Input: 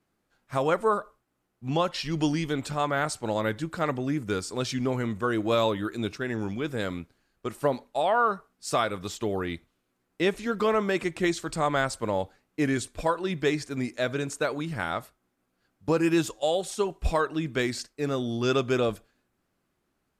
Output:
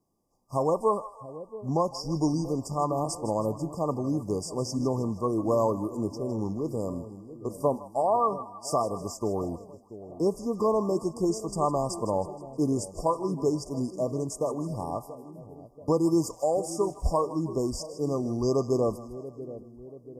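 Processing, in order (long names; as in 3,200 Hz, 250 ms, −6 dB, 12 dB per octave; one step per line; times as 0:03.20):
echo with a time of its own for lows and highs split 660 Hz, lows 683 ms, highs 158 ms, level −14 dB
brick-wall band-stop 1,200–4,700 Hz
0:16.28–0:17.08: surface crackle 100 per second −54 dBFS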